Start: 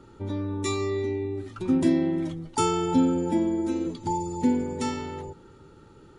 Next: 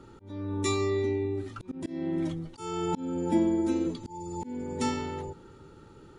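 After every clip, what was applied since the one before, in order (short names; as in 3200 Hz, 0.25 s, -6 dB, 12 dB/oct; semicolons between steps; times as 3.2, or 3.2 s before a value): auto swell 0.407 s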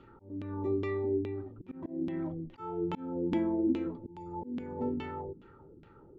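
LFO low-pass saw down 2.4 Hz 220–3100 Hz; gain -6 dB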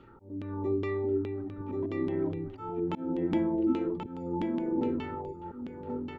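echo 1.083 s -4 dB; gain +1.5 dB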